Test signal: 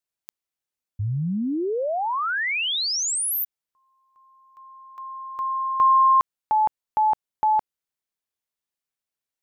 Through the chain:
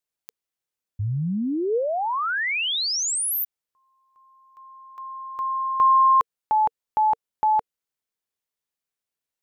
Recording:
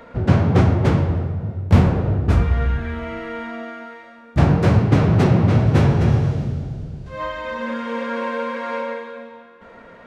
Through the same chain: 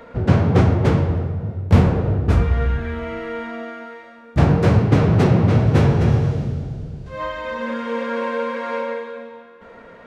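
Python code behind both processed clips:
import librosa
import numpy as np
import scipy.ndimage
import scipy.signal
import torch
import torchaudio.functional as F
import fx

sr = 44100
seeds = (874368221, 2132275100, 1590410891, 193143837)

y = fx.peak_eq(x, sr, hz=460.0, db=4.0, octaves=0.23)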